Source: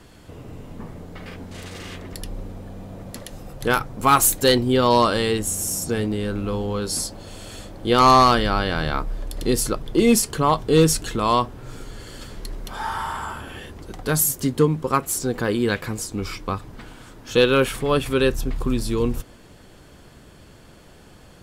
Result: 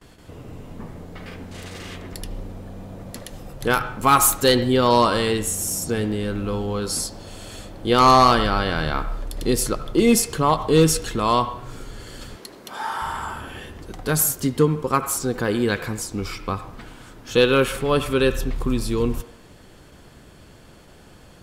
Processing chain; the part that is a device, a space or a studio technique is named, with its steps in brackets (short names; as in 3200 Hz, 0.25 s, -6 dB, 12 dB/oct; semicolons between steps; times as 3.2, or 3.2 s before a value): gate with hold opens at -38 dBFS; filtered reverb send (on a send: HPF 510 Hz + LPF 3100 Hz 12 dB/oct + reverb RT60 0.60 s, pre-delay 69 ms, DRR 11 dB); 12.36–13.02 on the sum: HPF 240 Hz 12 dB/oct